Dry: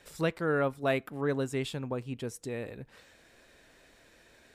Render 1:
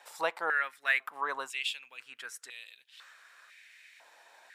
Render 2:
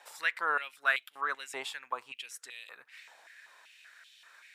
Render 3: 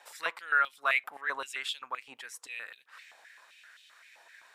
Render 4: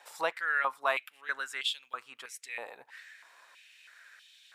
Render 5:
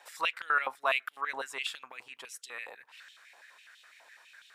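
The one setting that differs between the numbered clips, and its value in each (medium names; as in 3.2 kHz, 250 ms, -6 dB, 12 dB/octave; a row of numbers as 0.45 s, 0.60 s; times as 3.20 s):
step-sequenced high-pass, rate: 2 Hz, 5.2 Hz, 7.7 Hz, 3.1 Hz, 12 Hz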